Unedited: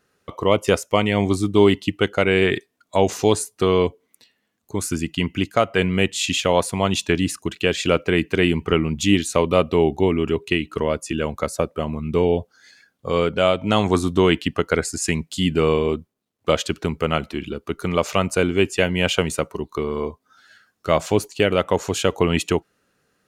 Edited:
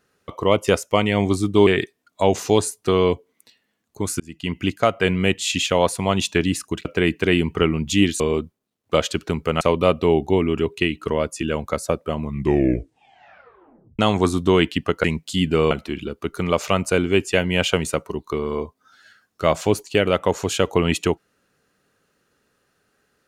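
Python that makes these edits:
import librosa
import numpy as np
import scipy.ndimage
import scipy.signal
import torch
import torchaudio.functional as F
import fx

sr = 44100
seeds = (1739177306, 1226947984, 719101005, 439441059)

y = fx.edit(x, sr, fx.cut(start_s=1.67, length_s=0.74),
    fx.fade_in_span(start_s=4.94, length_s=0.42),
    fx.cut(start_s=7.59, length_s=0.37),
    fx.tape_stop(start_s=11.92, length_s=1.77),
    fx.cut(start_s=14.74, length_s=0.34),
    fx.move(start_s=15.75, length_s=1.41, to_s=9.31), tone=tone)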